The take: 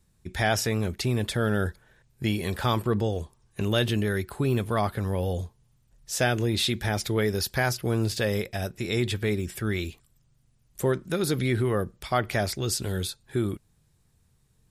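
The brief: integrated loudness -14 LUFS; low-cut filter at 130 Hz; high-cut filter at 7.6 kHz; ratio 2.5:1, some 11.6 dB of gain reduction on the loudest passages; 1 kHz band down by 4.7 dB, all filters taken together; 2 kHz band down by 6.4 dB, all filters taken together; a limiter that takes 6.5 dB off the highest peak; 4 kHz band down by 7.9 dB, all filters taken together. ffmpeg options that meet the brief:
-af "highpass=130,lowpass=7600,equalizer=f=1000:t=o:g=-5.5,equalizer=f=2000:t=o:g=-4.5,equalizer=f=4000:t=o:g=-8,acompressor=threshold=0.01:ratio=2.5,volume=23.7,alimiter=limit=0.841:level=0:latency=1"

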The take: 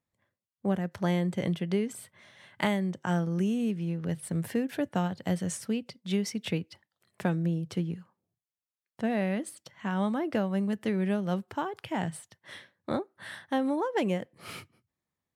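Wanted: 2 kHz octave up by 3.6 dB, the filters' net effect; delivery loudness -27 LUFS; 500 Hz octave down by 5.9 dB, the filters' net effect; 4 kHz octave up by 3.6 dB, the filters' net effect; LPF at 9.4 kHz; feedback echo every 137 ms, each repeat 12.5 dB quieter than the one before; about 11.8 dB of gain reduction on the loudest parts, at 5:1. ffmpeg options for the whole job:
-af "lowpass=9400,equalizer=f=500:t=o:g=-8,equalizer=f=2000:t=o:g=4,equalizer=f=4000:t=o:g=3.5,acompressor=threshold=0.0158:ratio=5,aecho=1:1:137|274|411:0.237|0.0569|0.0137,volume=4.47"

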